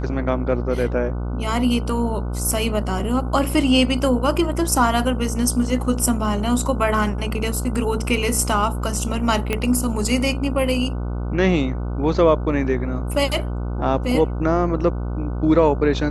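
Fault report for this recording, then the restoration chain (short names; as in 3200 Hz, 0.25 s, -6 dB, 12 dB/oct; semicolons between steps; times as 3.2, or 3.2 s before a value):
buzz 60 Hz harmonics 25 -25 dBFS
9.53 pop -8 dBFS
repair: de-click; de-hum 60 Hz, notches 25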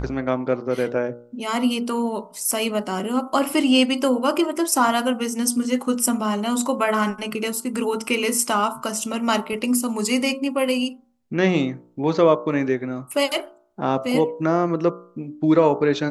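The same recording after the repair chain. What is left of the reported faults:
9.53 pop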